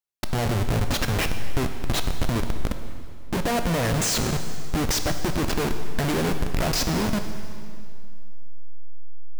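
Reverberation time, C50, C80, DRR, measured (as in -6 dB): 2.3 s, 8.0 dB, 9.0 dB, 6.5 dB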